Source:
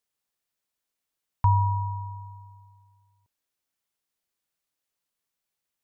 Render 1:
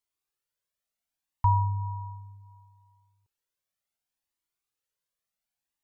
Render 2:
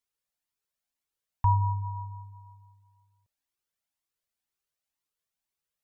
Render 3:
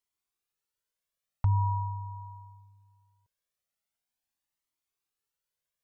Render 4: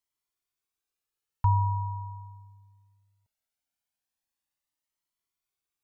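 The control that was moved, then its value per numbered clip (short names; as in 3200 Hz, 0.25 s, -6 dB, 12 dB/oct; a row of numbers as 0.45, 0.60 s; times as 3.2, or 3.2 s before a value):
cascading flanger, rate: 0.68, 2, 0.43, 0.2 Hz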